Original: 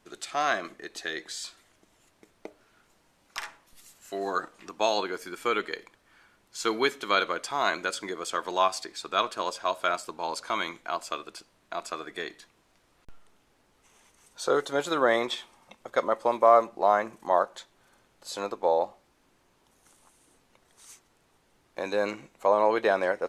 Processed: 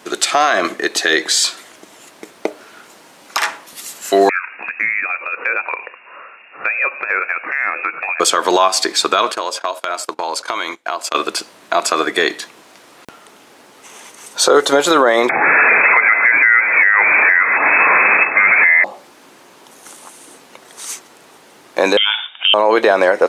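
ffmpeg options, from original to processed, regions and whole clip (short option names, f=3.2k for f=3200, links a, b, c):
-filter_complex "[0:a]asettb=1/sr,asplit=3[a][b][c];[a]atrim=end=4.294[d];[b]atrim=start=4.29:end=8.2,asetpts=PTS-STARTPTS,afade=t=in:d=0.004:c=qsin,afade=t=out:st=3.906:d=0.004:c=qsin,lowpass=f=2.4k:t=q:w=0.5098,lowpass=f=2.4k:t=q:w=0.6013,lowpass=f=2.4k:t=q:w=0.9,lowpass=f=2.4k:t=q:w=2.563,afreqshift=-2800,acompressor=threshold=-45dB:ratio=2.5:attack=3.2:release=140:knee=1:detection=peak[e];[c]atrim=start=8.196[f];[d][e]acrossfade=d=0.004:c1=hsin:c2=qsin[g];[g][f]acrossfade=d=0.004:c1=qsin:c2=hsin,asettb=1/sr,asplit=3[h][i][j];[h]atrim=end=9.324[k];[i]atrim=start=9.32:end=11.15,asetpts=PTS-STARTPTS,afade=t=in:d=0.004:c=qsin,afade=t=out:st=1.826:d=0.004:c=qsin,agate=range=-24dB:threshold=-43dB:ratio=16:release=100:detection=peak,equalizer=f=190:t=o:w=0.44:g=-13,acompressor=threshold=-41dB:ratio=5:attack=3.2:release=140:knee=1:detection=peak[l];[j]atrim=start=11.146[m];[k][l]acrossfade=d=0.004:c1=hsin:c2=qsin[n];[n][m]acrossfade=d=0.004:c1=qsin:c2=hsin,asettb=1/sr,asplit=3[o][p][q];[o]atrim=end=15.294[r];[p]atrim=start=15.29:end=18.84,asetpts=PTS-STARTPTS,afade=t=in:d=0.004:c=qsin,afade=t=out:st=3.546:d=0.004:c=qsin,aeval=exprs='val(0)+0.5*0.0501*sgn(val(0))':c=same,lowpass=f=2.2k:t=q:w=0.5098,lowpass=f=2.2k:t=q:w=0.6013,lowpass=f=2.2k:t=q:w=0.9,lowpass=f=2.2k:t=q:w=2.563,afreqshift=-2600[s];[q]atrim=start=18.836[t];[r][s]acrossfade=d=0.004:c1=hsin:c2=qsin[u];[u][t]acrossfade=d=0.004:c1=qsin:c2=hsin,asettb=1/sr,asplit=3[v][w][x];[v]atrim=end=21.974[y];[w]atrim=start=21.97:end=22.54,asetpts=PTS-STARTPTS,afade=t=in:d=0.004:c=qsin,afade=t=out:st=0.566:d=0.004:c=qsin,acompressor=threshold=-32dB:ratio=4:attack=3.2:release=140:knee=1:detection=peak,aecho=1:1:1.4:0.31,atrim=end_sample=25137,lowpass=f=3.1k:t=q:w=0.5098,lowpass=f=3.1k:t=q:w=0.6013,lowpass=f=3.1k:t=q:w=0.9,lowpass=f=3.1k:t=q:w=2.563,afreqshift=-3700[z];[x]atrim=start=22.536[aa];[y][z]acrossfade=d=0.004:c1=hsin:c2=qsin[ab];[ab][aa]acrossfade=d=0.004:c1=qsin:c2=hsin,highpass=250,acompressor=threshold=-27dB:ratio=6,alimiter=level_in=24dB:limit=-1dB:release=50:level=0:latency=1,volume=-1dB"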